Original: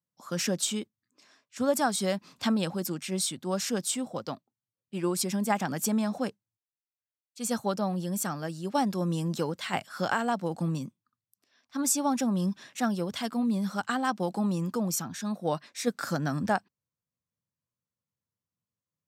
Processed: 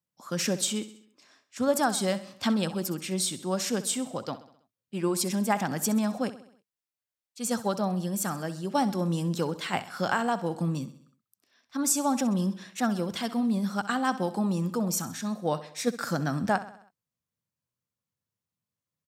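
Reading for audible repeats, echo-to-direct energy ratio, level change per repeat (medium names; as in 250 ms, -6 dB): 4, -13.5 dB, -5.5 dB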